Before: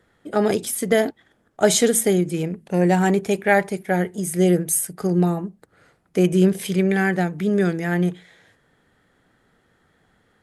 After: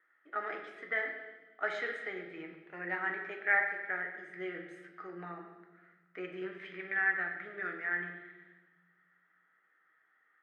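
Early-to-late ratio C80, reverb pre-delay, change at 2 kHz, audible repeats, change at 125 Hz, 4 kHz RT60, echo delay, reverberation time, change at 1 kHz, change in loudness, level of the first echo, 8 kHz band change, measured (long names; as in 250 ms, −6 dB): 8.0 dB, 6 ms, −4.5 dB, no echo audible, −33.5 dB, 1.2 s, no echo audible, 1.2 s, −14.0 dB, −15.5 dB, no echo audible, below −40 dB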